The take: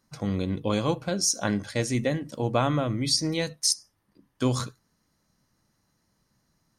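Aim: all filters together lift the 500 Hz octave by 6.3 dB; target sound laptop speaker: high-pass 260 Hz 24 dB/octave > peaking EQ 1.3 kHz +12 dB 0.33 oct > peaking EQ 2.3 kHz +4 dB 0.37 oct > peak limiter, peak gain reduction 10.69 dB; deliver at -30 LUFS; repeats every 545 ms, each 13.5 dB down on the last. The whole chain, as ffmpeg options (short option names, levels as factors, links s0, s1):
-af "highpass=f=260:w=0.5412,highpass=f=260:w=1.3066,equalizer=f=500:t=o:g=7,equalizer=f=1300:t=o:w=0.33:g=12,equalizer=f=2300:t=o:w=0.37:g=4,aecho=1:1:545|1090:0.211|0.0444,volume=0.841,alimiter=limit=0.119:level=0:latency=1"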